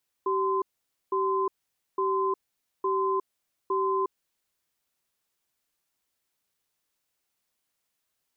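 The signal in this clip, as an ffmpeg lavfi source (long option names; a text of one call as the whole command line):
ffmpeg -f lavfi -i "aevalsrc='0.0501*(sin(2*PI*385*t)+sin(2*PI*1030*t))*clip(min(mod(t,0.86),0.36-mod(t,0.86))/0.005,0,1)':duration=4.05:sample_rate=44100" out.wav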